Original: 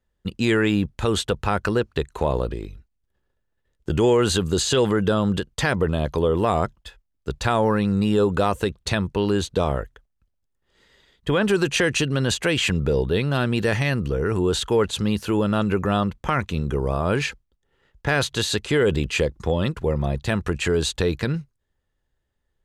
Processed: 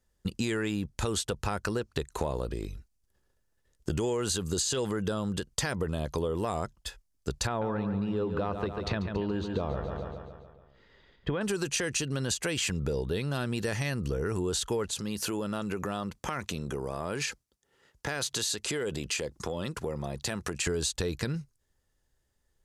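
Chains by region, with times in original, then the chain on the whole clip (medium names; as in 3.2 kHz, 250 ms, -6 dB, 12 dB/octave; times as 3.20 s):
7.47–11.41 s: distance through air 340 m + feedback delay 141 ms, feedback 56%, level -9 dB
14.93–20.67 s: high-pass 47 Hz + compression 3:1, threshold -28 dBFS + bass shelf 100 Hz -12 dB
whole clip: high-order bell 7.7 kHz +9 dB; compression 6:1, threshold -28 dBFS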